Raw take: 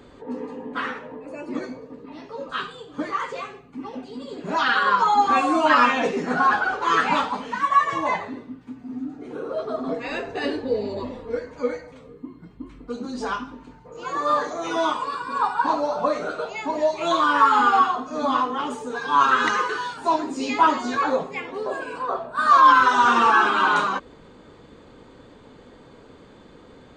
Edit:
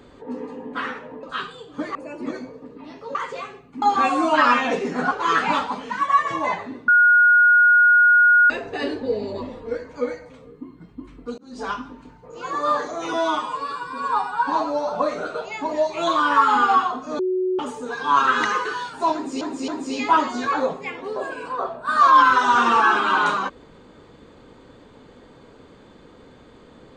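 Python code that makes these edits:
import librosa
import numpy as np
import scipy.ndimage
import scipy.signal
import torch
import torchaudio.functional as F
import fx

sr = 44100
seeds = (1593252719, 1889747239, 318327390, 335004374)

y = fx.edit(x, sr, fx.move(start_s=2.43, length_s=0.72, to_s=1.23),
    fx.cut(start_s=3.82, length_s=1.32),
    fx.cut(start_s=6.43, length_s=0.3),
    fx.bleep(start_s=8.5, length_s=1.62, hz=1440.0, db=-10.5),
    fx.fade_in_span(start_s=13.0, length_s=0.33),
    fx.stretch_span(start_s=14.75, length_s=1.16, factor=1.5),
    fx.bleep(start_s=18.23, length_s=0.4, hz=370.0, db=-19.0),
    fx.repeat(start_s=20.18, length_s=0.27, count=3), tone=tone)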